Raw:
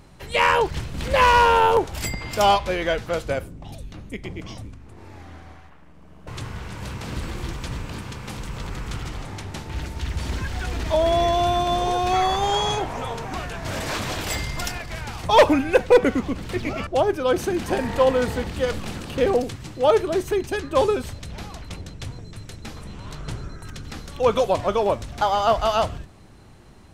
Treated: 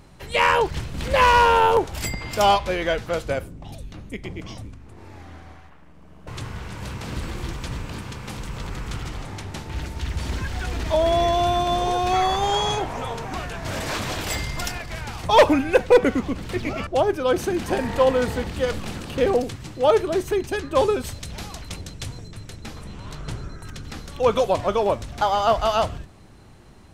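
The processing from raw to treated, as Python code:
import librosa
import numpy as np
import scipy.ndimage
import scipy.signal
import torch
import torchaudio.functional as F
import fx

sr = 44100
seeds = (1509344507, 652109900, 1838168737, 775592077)

y = fx.high_shelf(x, sr, hz=3700.0, db=8.0, at=(21.04, 22.28))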